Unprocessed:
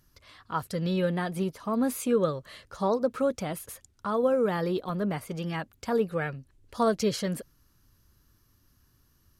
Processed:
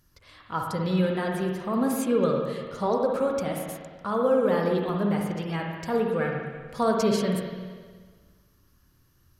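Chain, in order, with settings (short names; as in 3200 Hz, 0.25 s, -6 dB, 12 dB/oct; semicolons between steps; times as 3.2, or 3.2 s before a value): spring tank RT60 1.6 s, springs 49/59 ms, chirp 55 ms, DRR 0.5 dB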